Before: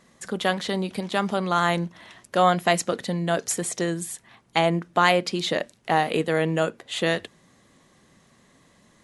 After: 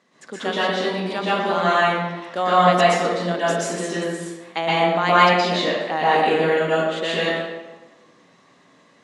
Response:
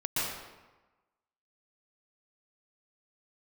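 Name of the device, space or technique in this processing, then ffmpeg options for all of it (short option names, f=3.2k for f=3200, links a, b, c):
supermarket ceiling speaker: -filter_complex "[0:a]highpass=240,lowpass=5.6k[a];[1:a]atrim=start_sample=2205[b];[a][b]afir=irnorm=-1:irlink=0,volume=-2.5dB"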